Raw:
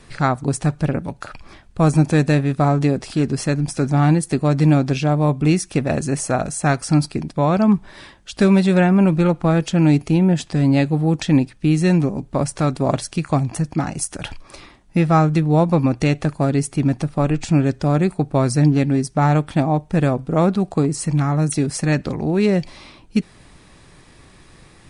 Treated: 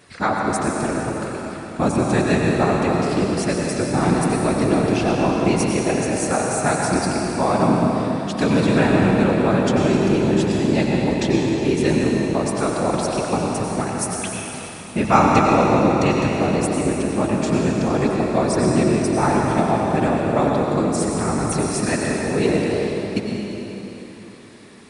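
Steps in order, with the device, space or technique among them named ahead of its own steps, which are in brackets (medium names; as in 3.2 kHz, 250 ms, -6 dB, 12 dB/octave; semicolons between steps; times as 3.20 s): 15.04–15.55 s: fifteen-band graphic EQ 250 Hz +5 dB, 1 kHz +7 dB, 2.5 kHz +9 dB, 6.3 kHz +10 dB; whispering ghost (whisper effect; high-pass 260 Hz 6 dB/octave; reverberation RT60 3.7 s, pre-delay 84 ms, DRR -1.5 dB); trim -1.5 dB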